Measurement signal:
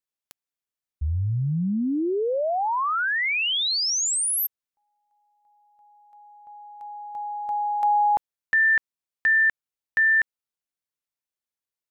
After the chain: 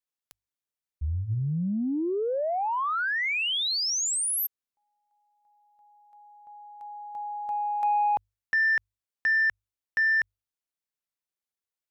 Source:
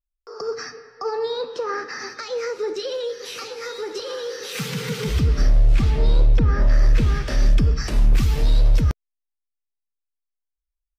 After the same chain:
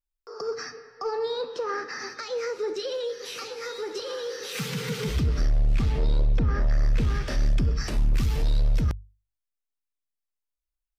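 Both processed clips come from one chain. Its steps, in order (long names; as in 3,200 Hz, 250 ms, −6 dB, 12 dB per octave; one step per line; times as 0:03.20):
mains-hum notches 50/100 Hz
soft clipping −13.5 dBFS
level −3 dB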